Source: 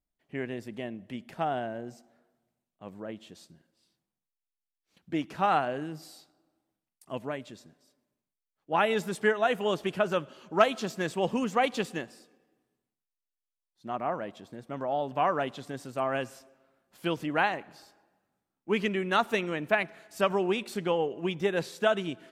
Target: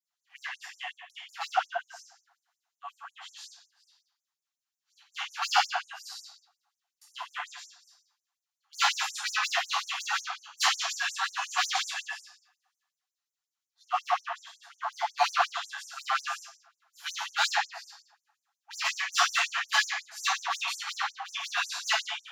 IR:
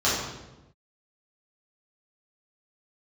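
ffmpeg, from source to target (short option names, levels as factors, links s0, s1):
-filter_complex "[0:a]aeval=exprs='0.0668*(abs(mod(val(0)/0.0668+3,4)-2)-1)':c=same[s0];[1:a]atrim=start_sample=2205,afade=t=out:st=0.3:d=0.01,atrim=end_sample=13671[s1];[s0][s1]afir=irnorm=-1:irlink=0,afftfilt=real='re*gte(b*sr/1024,650*pow(5900/650,0.5+0.5*sin(2*PI*5.5*pts/sr)))':imag='im*gte(b*sr/1024,650*pow(5900/650,0.5+0.5*sin(2*PI*5.5*pts/sr)))':win_size=1024:overlap=0.75,volume=0.562"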